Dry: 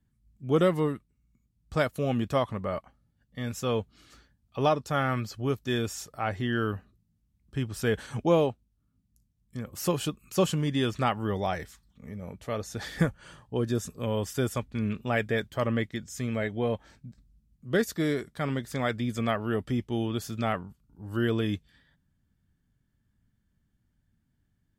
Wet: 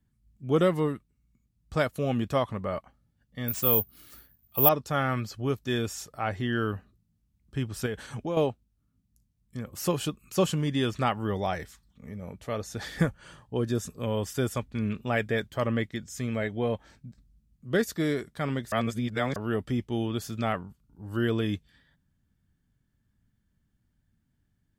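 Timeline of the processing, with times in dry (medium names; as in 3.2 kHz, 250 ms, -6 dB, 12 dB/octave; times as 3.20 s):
3.48–4.69 s: careless resampling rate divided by 3×, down none, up zero stuff
7.86–8.37 s: compression 2:1, threshold -34 dBFS
18.72–19.36 s: reverse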